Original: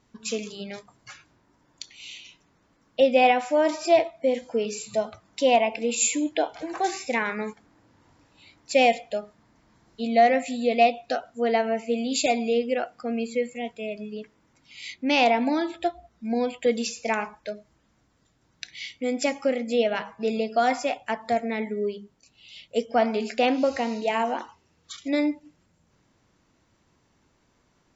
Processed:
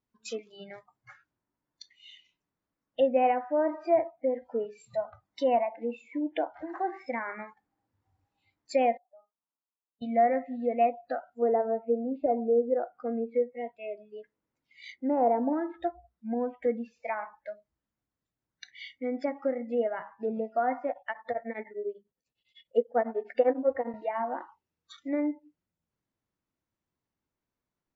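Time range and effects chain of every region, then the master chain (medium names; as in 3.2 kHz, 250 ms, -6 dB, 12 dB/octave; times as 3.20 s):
8.97–10.02 s: steep low-pass 1.3 kHz + differentiator + transient shaper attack 0 dB, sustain +6 dB
11.42–15.53 s: low-pass that closes with the level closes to 1.2 kHz, closed at -22 dBFS + peaking EQ 460 Hz +5 dB 0.9 oct
20.89–23.94 s: small resonant body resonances 500/1800/3400 Hz, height 9 dB, ringing for 30 ms + tremolo of two beating tones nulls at 10 Hz
whole clip: low-pass that closes with the level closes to 1.5 kHz, closed at -21.5 dBFS; spectral noise reduction 18 dB; treble shelf 5.6 kHz -7 dB; trim -5 dB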